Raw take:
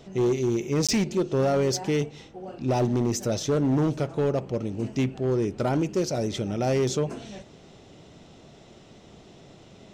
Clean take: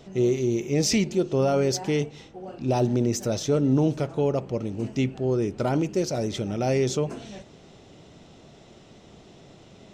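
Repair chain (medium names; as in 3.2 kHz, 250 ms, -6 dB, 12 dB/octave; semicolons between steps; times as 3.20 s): clip repair -18.5 dBFS; interpolate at 0.87 s, 16 ms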